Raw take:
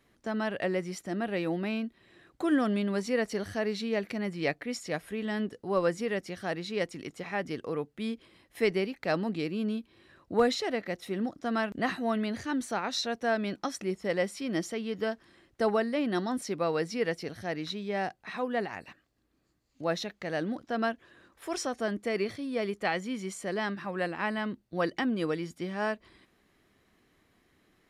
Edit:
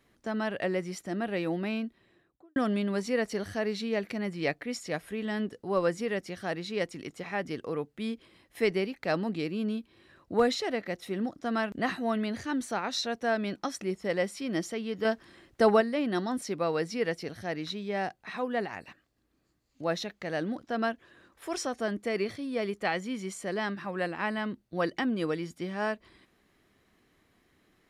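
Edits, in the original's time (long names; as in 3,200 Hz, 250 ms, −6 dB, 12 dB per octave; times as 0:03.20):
0:01.78–0:02.56: fade out and dull
0:15.05–0:15.81: clip gain +5 dB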